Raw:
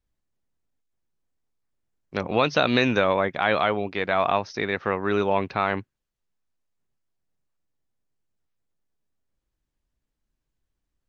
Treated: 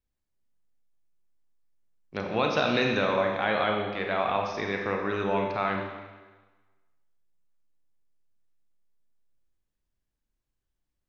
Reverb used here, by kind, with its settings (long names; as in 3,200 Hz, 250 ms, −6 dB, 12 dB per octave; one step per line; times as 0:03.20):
four-comb reverb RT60 1.3 s, combs from 30 ms, DRR 1.5 dB
level −6 dB